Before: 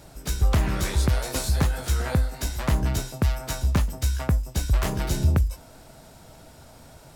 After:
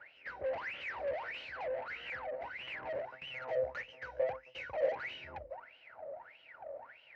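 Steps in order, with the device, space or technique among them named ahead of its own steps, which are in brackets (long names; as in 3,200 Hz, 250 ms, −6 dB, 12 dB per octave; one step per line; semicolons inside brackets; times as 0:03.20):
wah-wah guitar rig (LFO wah 1.6 Hz 550–3,000 Hz, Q 18; tube saturation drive 56 dB, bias 0.35; loudspeaker in its box 76–3,600 Hz, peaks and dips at 190 Hz −7 dB, 540 Hz +9 dB, 1,200 Hz −5 dB, 2,000 Hz +5 dB, 3,500 Hz −10 dB)
0:03.34–0:04.95: thirty-one-band graphic EQ 125 Hz +5 dB, 500 Hz +12 dB, 6,300 Hz +9 dB
level +16 dB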